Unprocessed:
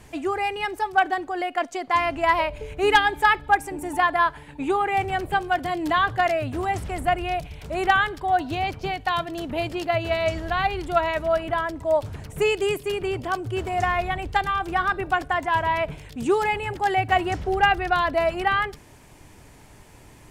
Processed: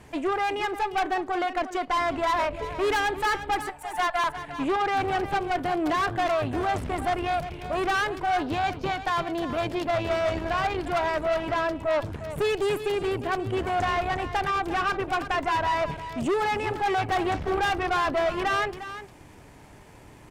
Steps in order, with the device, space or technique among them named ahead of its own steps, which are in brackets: 3.69–4.24 steep high-pass 660 Hz 48 dB/oct; tube preamp driven hard (tube stage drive 27 dB, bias 0.75; low shelf 96 Hz -6 dB; high shelf 3400 Hz -8 dB); echo 0.354 s -12 dB; gain +6 dB

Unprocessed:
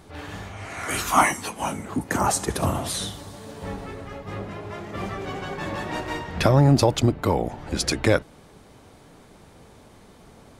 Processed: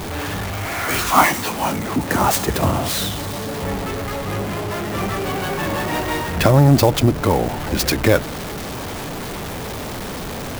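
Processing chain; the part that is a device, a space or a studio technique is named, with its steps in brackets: early CD player with a faulty converter (zero-crossing step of -26.5 dBFS; clock jitter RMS 0.026 ms); gain +3.5 dB

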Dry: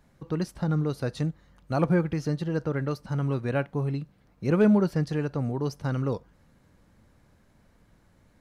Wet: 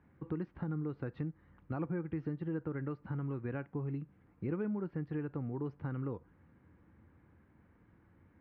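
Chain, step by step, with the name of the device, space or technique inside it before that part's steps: bass amplifier (compressor 4:1, threshold -33 dBFS, peak gain reduction 14.5 dB; speaker cabinet 70–2300 Hz, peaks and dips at 83 Hz +7 dB, 320 Hz +6 dB, 620 Hz -8 dB); gain -3.5 dB

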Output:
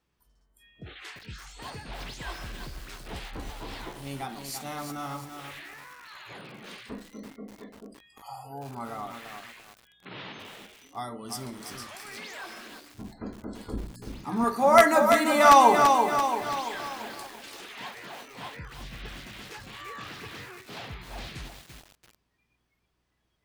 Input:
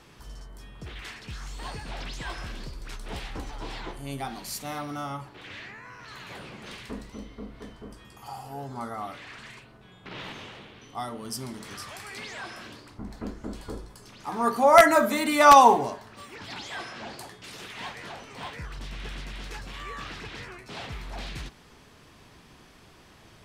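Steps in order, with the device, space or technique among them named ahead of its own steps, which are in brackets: 13.73–14.44 resonant low shelf 360 Hz +8 dB, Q 1.5; video cassette with head-switching buzz (buzz 60 Hz, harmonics 6, -56 dBFS -8 dB/oct; white noise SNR 40 dB); spectral noise reduction 23 dB; lo-fi delay 0.337 s, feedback 55%, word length 7-bit, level -5 dB; gain -2 dB

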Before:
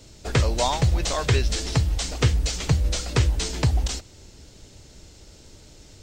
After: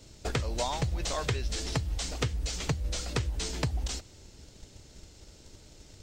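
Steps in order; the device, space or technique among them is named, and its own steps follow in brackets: drum-bus smash (transient shaper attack +6 dB, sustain +1 dB; compressor 6:1, threshold -20 dBFS, peak gain reduction 11 dB; soft clip -12 dBFS, distortion -22 dB); gain -5.5 dB

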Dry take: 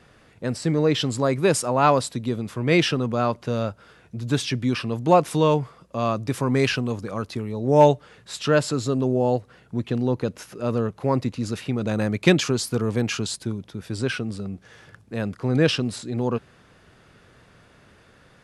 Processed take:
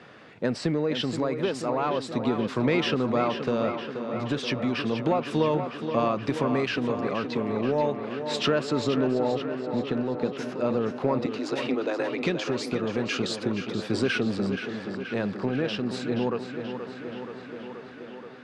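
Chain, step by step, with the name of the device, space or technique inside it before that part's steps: 6.86–7.35 LPF 6900 Hz; AM radio (BPF 180–4000 Hz; compressor 10:1, threshold -26 dBFS, peak gain reduction 17 dB; soft clip -18 dBFS, distortion -25 dB; tremolo 0.35 Hz, depth 34%); 11.26–12.22 Chebyshev high-pass 250 Hz, order 10; 13.62–14.27 high shelf 9400 Hz +10 dB; tape echo 0.478 s, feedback 81%, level -7 dB, low-pass 4300 Hz; gain +6.5 dB

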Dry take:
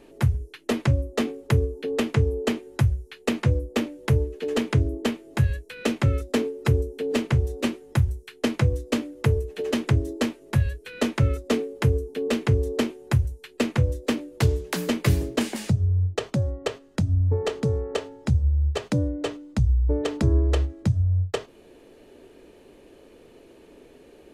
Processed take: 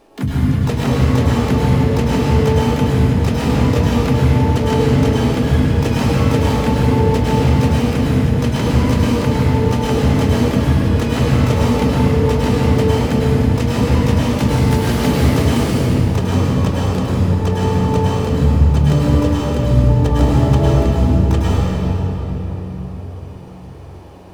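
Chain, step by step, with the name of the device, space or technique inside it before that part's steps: shimmer-style reverb (harmoniser +12 st -4 dB; reverb RT60 4.5 s, pre-delay 96 ms, DRR -8 dB); gain -1.5 dB

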